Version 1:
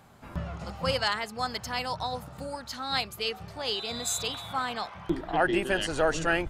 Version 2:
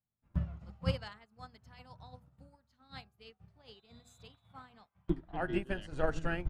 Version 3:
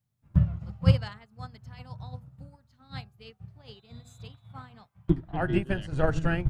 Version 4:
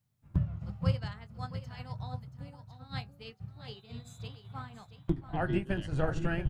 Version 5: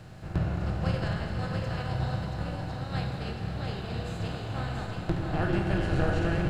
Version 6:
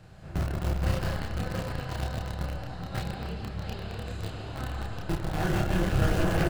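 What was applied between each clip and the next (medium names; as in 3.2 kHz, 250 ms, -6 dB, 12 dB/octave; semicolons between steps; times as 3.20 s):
tone controls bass +13 dB, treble -6 dB; de-hum 81.62 Hz, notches 20; upward expansion 2.5:1, over -44 dBFS; trim -6.5 dB
peaking EQ 120 Hz +12 dB 1 oct; trim +5.5 dB
compression 2:1, threshold -33 dBFS, peak gain reduction 11 dB; doubling 21 ms -14 dB; delay 680 ms -11.5 dB; trim +1.5 dB
spectral levelling over time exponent 0.4; Schroeder reverb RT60 3 s, combs from 31 ms, DRR 2 dB; trim -3 dB
delay 150 ms -6 dB; in parallel at -7 dB: bit crusher 4-bit; on the sum: chorus voices 6, 1.3 Hz, delay 30 ms, depth 3 ms; trim -1 dB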